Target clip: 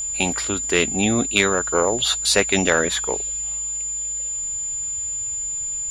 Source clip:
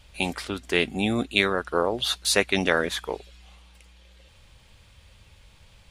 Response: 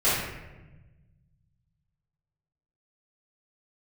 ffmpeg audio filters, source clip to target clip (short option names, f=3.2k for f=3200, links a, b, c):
-af "lowpass=9.8k,acontrast=78,aeval=exprs='val(0)+0.0794*sin(2*PI*7100*n/s)':c=same,volume=-2dB"